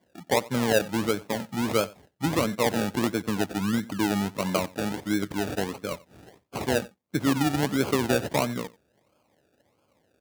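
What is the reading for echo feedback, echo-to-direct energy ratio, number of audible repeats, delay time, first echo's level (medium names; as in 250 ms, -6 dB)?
no regular repeats, -21.5 dB, 1, 90 ms, -21.5 dB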